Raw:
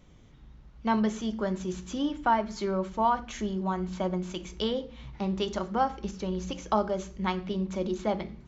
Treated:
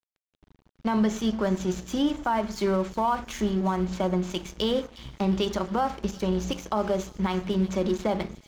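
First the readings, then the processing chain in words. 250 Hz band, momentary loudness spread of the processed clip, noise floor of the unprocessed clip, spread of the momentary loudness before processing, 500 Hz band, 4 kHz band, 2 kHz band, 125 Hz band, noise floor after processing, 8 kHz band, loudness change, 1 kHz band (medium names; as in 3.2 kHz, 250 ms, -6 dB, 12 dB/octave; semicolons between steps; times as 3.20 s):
+4.5 dB, 4 LU, -54 dBFS, 8 LU, +3.5 dB, +4.0 dB, +2.0 dB, +4.5 dB, -84 dBFS, no reading, +3.0 dB, 0.0 dB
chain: crossover distortion -46 dBFS; feedback echo behind a high-pass 358 ms, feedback 55%, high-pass 3.9 kHz, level -15 dB; peak limiter -22.5 dBFS, peak gain reduction 10 dB; trim +7 dB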